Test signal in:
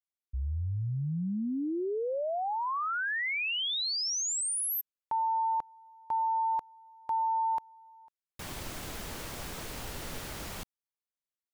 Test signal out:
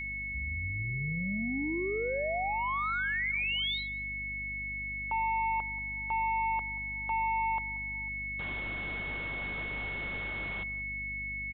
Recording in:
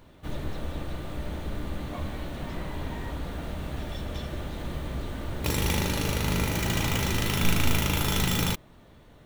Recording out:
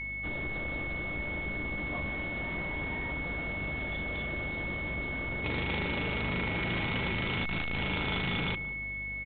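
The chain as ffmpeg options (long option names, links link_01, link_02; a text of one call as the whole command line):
ffmpeg -i in.wav -filter_complex "[0:a]asplit=2[link_01][link_02];[link_02]adelay=183,lowpass=frequency=850:poles=1,volume=-16dB,asplit=2[link_03][link_04];[link_04]adelay=183,lowpass=frequency=850:poles=1,volume=0.34,asplit=2[link_05][link_06];[link_06]adelay=183,lowpass=frequency=850:poles=1,volume=0.34[link_07];[link_01][link_03][link_05][link_07]amix=inputs=4:normalize=0,aresample=8000,asoftclip=type=tanh:threshold=-26dB,aresample=44100,aeval=exprs='val(0)+0.0178*sin(2*PI*2200*n/s)':channel_layout=same,lowshelf=frequency=95:gain=-9.5,aeval=exprs='val(0)+0.00631*(sin(2*PI*50*n/s)+sin(2*PI*2*50*n/s)/2+sin(2*PI*3*50*n/s)/3+sin(2*PI*4*50*n/s)/4+sin(2*PI*5*50*n/s)/5)':channel_layout=same" out.wav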